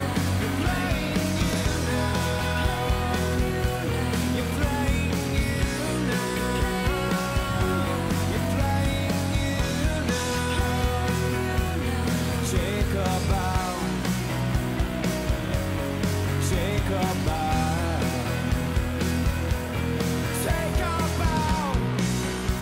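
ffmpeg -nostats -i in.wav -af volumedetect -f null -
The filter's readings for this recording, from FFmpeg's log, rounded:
mean_volume: -24.7 dB
max_volume: -15.1 dB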